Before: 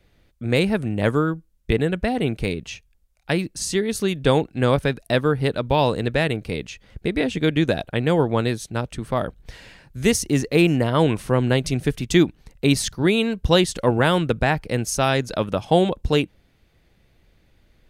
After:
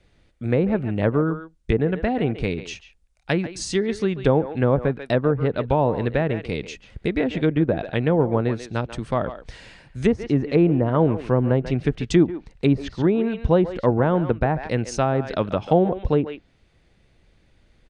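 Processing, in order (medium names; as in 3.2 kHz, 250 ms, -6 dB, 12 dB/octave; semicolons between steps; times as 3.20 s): resampled via 22.05 kHz; speakerphone echo 140 ms, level -12 dB; low-pass that closes with the level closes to 950 Hz, closed at -14.5 dBFS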